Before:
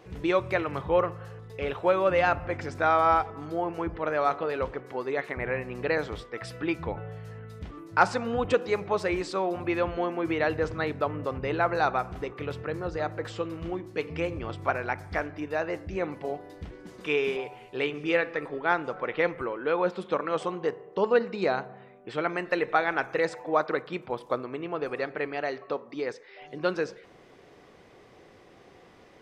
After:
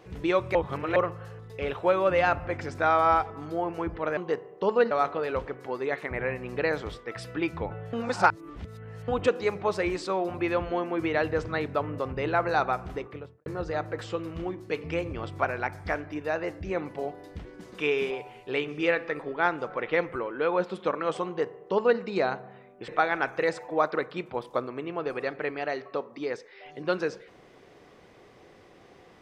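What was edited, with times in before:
0:00.55–0:00.96: reverse
0:07.19–0:08.34: reverse
0:12.18–0:12.72: fade out and dull
0:20.52–0:21.26: duplicate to 0:04.17
0:22.14–0:22.64: remove

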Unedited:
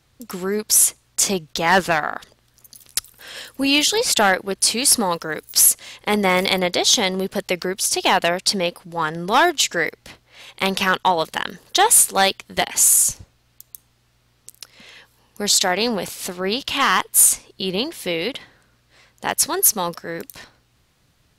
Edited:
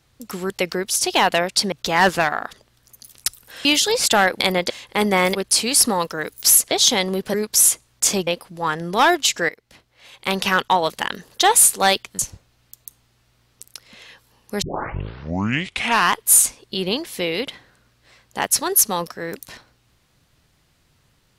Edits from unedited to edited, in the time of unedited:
0:00.50–0:01.43: swap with 0:07.40–0:08.62
0:03.36–0:03.71: remove
0:04.46–0:05.82: swap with 0:06.47–0:06.77
0:09.84–0:10.86: fade in, from −16.5 dB
0:12.54–0:13.06: remove
0:15.49: tape start 1.52 s

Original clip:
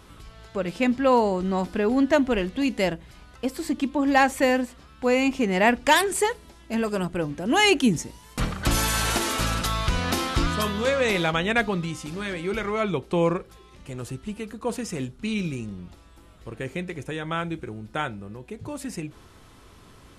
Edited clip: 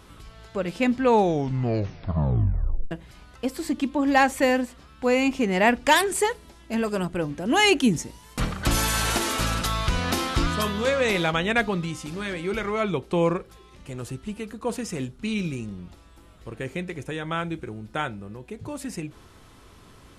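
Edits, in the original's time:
0:00.95: tape stop 1.96 s

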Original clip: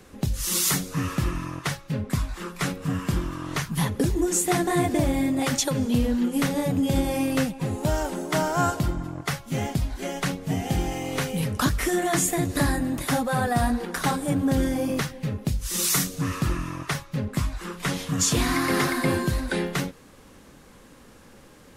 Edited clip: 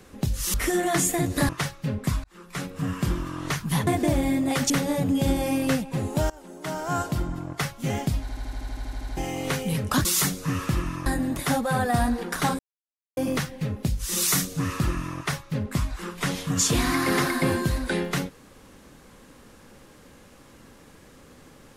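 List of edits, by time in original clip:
0:00.54–0:01.55: swap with 0:11.73–0:12.68
0:02.30–0:03.24: fade in equal-power
0:03.93–0:04.78: remove
0:05.61–0:06.38: remove
0:07.98–0:09.06: fade in, from −23 dB
0:09.89: stutter in place 0.08 s, 12 plays
0:14.21–0:14.79: silence

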